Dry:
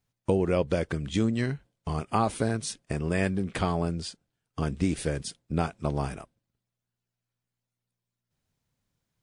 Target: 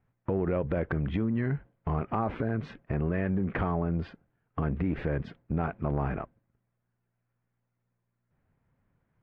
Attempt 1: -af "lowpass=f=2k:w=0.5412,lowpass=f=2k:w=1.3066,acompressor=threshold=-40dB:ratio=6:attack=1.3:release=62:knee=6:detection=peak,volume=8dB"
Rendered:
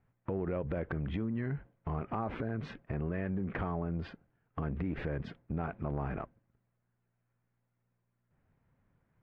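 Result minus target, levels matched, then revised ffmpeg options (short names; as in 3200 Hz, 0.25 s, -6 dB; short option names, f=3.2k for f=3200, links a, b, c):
compressor: peak gain reduction +6 dB
-af "lowpass=f=2k:w=0.5412,lowpass=f=2k:w=1.3066,acompressor=threshold=-32.5dB:ratio=6:attack=1.3:release=62:knee=6:detection=peak,volume=8dB"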